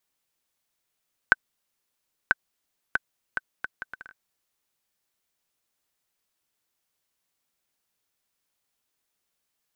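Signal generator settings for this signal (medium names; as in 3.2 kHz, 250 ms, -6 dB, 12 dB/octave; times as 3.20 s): bouncing ball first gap 0.99 s, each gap 0.65, 1.53 kHz, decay 27 ms -2 dBFS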